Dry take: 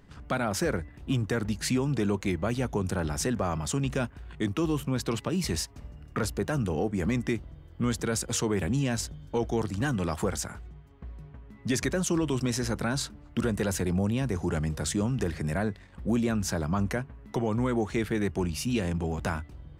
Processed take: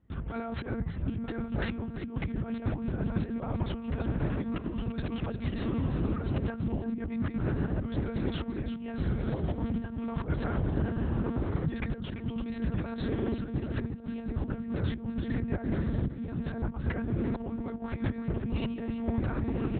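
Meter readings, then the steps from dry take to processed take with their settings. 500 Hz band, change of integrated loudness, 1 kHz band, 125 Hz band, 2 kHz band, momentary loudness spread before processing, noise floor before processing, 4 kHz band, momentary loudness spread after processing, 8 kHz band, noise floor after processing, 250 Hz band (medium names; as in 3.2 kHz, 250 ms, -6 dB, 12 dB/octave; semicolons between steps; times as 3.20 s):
-6.5 dB, -3.5 dB, -6.5 dB, -1.5 dB, -7.0 dB, 8 LU, -51 dBFS, -11.0 dB, 5 LU, under -40 dB, -40 dBFS, -2.5 dB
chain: fade out at the end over 0.96 s; treble shelf 2.4 kHz -10 dB; gate with hold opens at -42 dBFS; comb 5.6 ms, depth 34%; echo that smears into a reverb 1147 ms, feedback 41%, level -11.5 dB; compressor with a negative ratio -33 dBFS, ratio -0.5; peaking EQ 86 Hz +12.5 dB 1.8 oct; delay 342 ms -13 dB; peak limiter -22 dBFS, peak gain reduction 9 dB; monotone LPC vocoder at 8 kHz 230 Hz; high-pass 50 Hz; trim +2 dB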